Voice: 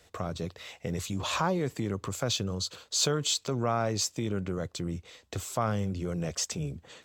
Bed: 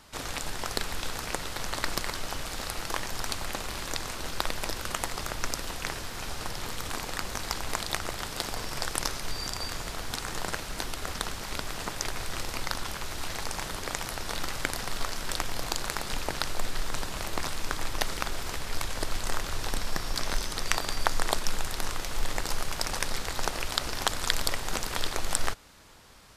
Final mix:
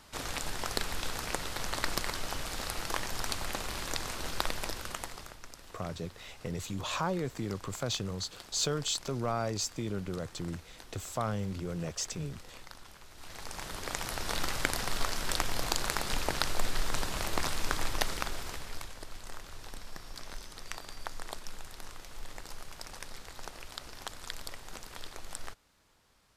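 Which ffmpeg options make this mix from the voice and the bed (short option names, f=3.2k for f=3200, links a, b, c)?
-filter_complex "[0:a]adelay=5600,volume=-4dB[a];[1:a]volume=15.5dB,afade=t=out:st=4.44:d=0.96:silence=0.16788,afade=t=in:st=13.14:d=1.21:silence=0.133352,afade=t=out:st=17.77:d=1.21:silence=0.199526[b];[a][b]amix=inputs=2:normalize=0"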